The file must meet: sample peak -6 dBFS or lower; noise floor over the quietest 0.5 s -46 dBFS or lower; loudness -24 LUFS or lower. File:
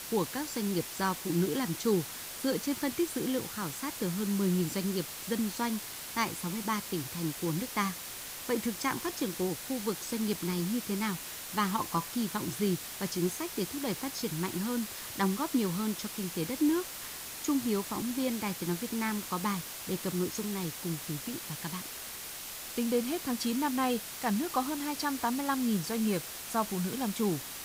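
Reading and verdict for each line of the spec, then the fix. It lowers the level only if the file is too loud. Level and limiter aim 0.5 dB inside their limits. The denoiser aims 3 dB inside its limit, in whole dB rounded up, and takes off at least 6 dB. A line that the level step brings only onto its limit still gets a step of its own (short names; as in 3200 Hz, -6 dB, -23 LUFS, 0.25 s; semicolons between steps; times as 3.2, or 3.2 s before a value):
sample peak -16.0 dBFS: OK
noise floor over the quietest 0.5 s -42 dBFS: fail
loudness -32.5 LUFS: OK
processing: denoiser 7 dB, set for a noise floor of -42 dBFS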